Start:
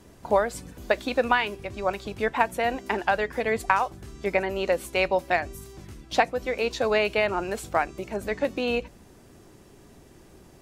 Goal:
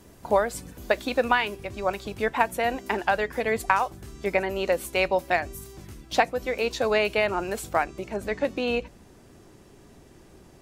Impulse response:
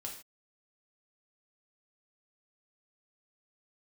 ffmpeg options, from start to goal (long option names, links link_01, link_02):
-af "asetnsamples=nb_out_samples=441:pad=0,asendcmd='7.84 highshelf g -5',highshelf=frequency=12000:gain=9.5"